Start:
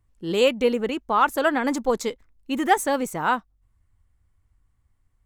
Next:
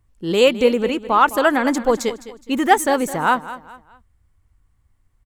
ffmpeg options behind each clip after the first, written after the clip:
-af "aecho=1:1:209|418|627:0.178|0.0622|0.0218,volume=5dB"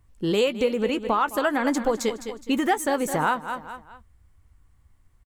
-filter_complex "[0:a]acompressor=threshold=-23dB:ratio=5,asplit=2[a][b];[b]adelay=14,volume=-13dB[c];[a][c]amix=inputs=2:normalize=0,volume=2.5dB"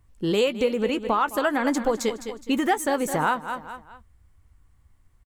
-af anull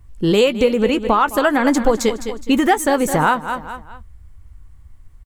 -af "lowshelf=f=93:g=11,volume=7dB"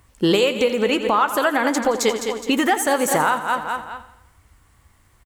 -af "highpass=f=520:p=1,alimiter=limit=-16dB:level=0:latency=1:release=495,aecho=1:1:85|170|255|340|425:0.224|0.116|0.0605|0.0315|0.0164,volume=7.5dB"

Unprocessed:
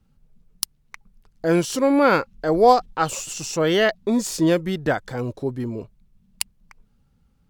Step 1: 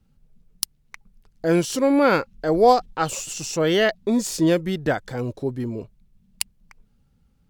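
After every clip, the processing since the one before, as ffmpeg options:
-af "equalizer=f=1.1k:w=1.5:g=-3"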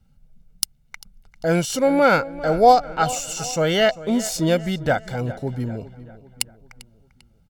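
-filter_complex "[0:a]aecho=1:1:1.4:0.51,asplit=2[a][b];[b]adelay=396,lowpass=f=4k:p=1,volume=-16.5dB,asplit=2[c][d];[d]adelay=396,lowpass=f=4k:p=1,volume=0.49,asplit=2[e][f];[f]adelay=396,lowpass=f=4k:p=1,volume=0.49,asplit=2[g][h];[h]adelay=396,lowpass=f=4k:p=1,volume=0.49[i];[a][c][e][g][i]amix=inputs=5:normalize=0,volume=1dB"

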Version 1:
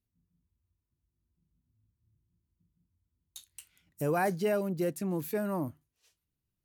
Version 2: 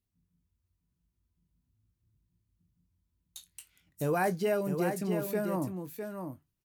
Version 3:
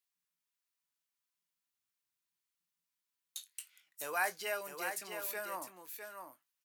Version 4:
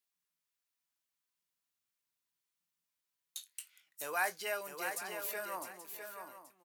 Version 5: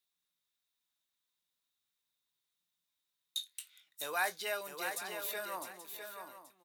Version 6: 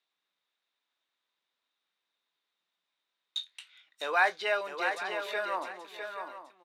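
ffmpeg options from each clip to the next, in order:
-filter_complex "[0:a]asplit=2[a][b];[b]adelay=22,volume=-12dB[c];[a][c]amix=inputs=2:normalize=0,aecho=1:1:655:0.447"
-af "highpass=1.2k,volume=2.5dB"
-af "aecho=1:1:829:0.211"
-af "equalizer=f=3.7k:w=7.3:g=14"
-af "highpass=340,lowpass=3k,volume=9dB"

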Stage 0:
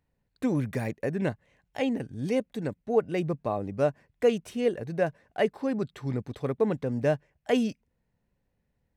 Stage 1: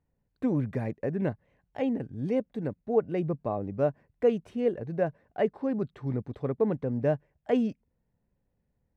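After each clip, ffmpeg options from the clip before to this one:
-af "lowpass=f=1k:p=1"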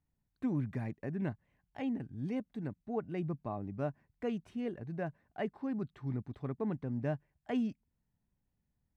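-af "equalizer=f=500:w=2.3:g=-11,volume=-5dB"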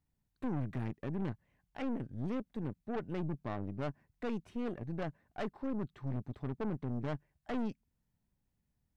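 -af "aeval=exprs='(tanh(79.4*val(0)+0.75)-tanh(0.75))/79.4':c=same,volume=5dB"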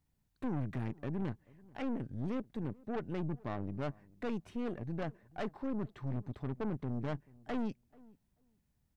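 -filter_complex "[0:a]asplit=2[a][b];[b]alimiter=level_in=15dB:limit=-24dB:level=0:latency=1,volume=-15dB,volume=-2dB[c];[a][c]amix=inputs=2:normalize=0,asplit=2[d][e];[e]adelay=436,lowpass=f=910:p=1,volume=-23dB,asplit=2[f][g];[g]adelay=436,lowpass=f=910:p=1,volume=0.16[h];[d][f][h]amix=inputs=3:normalize=0,volume=-2dB"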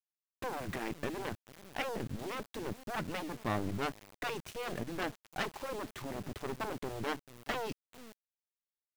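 -af "afftfilt=real='re*lt(hypot(re,im),0.0794)':imag='im*lt(hypot(re,im),0.0794)':win_size=1024:overlap=0.75,aeval=exprs='val(0)*gte(abs(val(0)),0.00211)':c=same,highshelf=f=2k:g=8,volume=6dB"

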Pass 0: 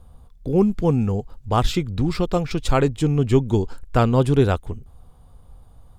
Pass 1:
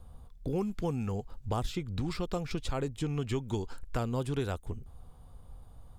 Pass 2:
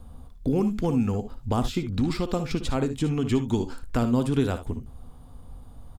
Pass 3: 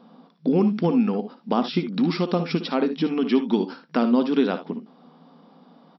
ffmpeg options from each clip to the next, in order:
-filter_complex "[0:a]acrossover=split=860|5700[a][b][c];[a]acompressor=threshold=-28dB:ratio=4[d];[b]acompressor=threshold=-39dB:ratio=4[e];[c]acompressor=threshold=-48dB:ratio=4[f];[d][e][f]amix=inputs=3:normalize=0,volume=-3.5dB"
-filter_complex "[0:a]equalizer=f=250:t=o:w=0.42:g=9.5,asplit=2[a][b];[b]aecho=0:1:59|73:0.237|0.2[c];[a][c]amix=inputs=2:normalize=0,volume=5.5dB"
-af "afftfilt=real='re*between(b*sr/4096,160,5700)':imag='im*between(b*sr/4096,160,5700)':win_size=4096:overlap=0.75,volume=4.5dB"

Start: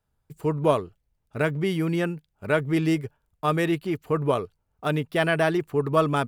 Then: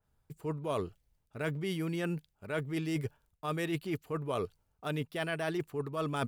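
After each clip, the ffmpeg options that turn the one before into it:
-af "areverse,acompressor=threshold=-31dB:ratio=12,areverse,adynamicequalizer=threshold=0.002:dfrequency=2600:dqfactor=0.7:tfrequency=2600:tqfactor=0.7:attack=5:release=100:ratio=0.375:range=2.5:mode=boostabove:tftype=highshelf"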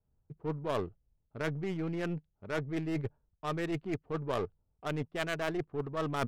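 -af "aeval=exprs='0.106*(cos(1*acos(clip(val(0)/0.106,-1,1)))-cos(1*PI/2))+0.0376*(cos(2*acos(clip(val(0)/0.106,-1,1)))-cos(2*PI/2))':c=same,adynamicsmooth=sensitivity=7:basefreq=720"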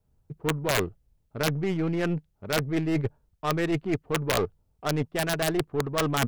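-af "aeval=exprs='(mod(13.3*val(0)+1,2)-1)/13.3':c=same,volume=8dB"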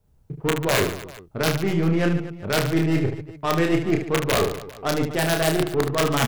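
-filter_complex "[0:a]asplit=2[a][b];[b]alimiter=limit=-22dB:level=0:latency=1:release=411,volume=-1dB[c];[a][c]amix=inputs=2:normalize=0,aecho=1:1:30|75|142.5|243.8|395.6:0.631|0.398|0.251|0.158|0.1"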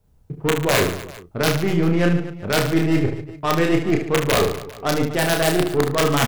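-filter_complex "[0:a]asplit=2[a][b];[b]adelay=34,volume=-11dB[c];[a][c]amix=inputs=2:normalize=0,volume=2.5dB"

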